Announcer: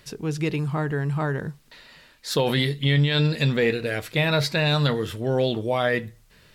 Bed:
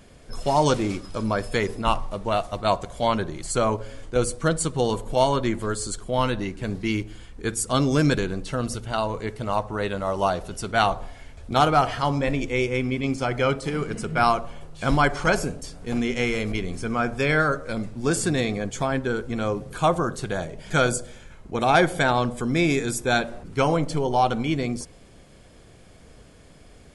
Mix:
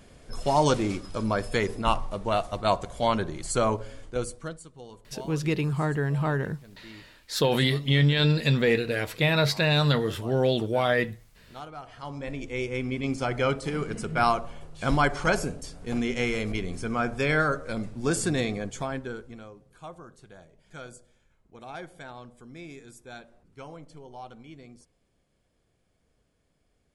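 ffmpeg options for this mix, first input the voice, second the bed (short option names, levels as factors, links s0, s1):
-filter_complex "[0:a]adelay=5050,volume=0.891[s0];[1:a]volume=7.5,afade=t=out:st=3.71:d=0.92:silence=0.0944061,afade=t=in:st=11.84:d=1.34:silence=0.105925,afade=t=out:st=18.41:d=1.09:silence=0.112202[s1];[s0][s1]amix=inputs=2:normalize=0"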